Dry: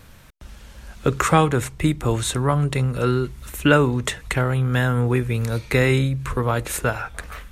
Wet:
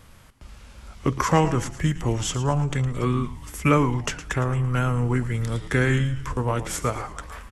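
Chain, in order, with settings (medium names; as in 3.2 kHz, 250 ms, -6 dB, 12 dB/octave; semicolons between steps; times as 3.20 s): frequency-shifting echo 112 ms, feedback 40%, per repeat -140 Hz, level -12.5 dB; formant shift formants -3 st; trim -3 dB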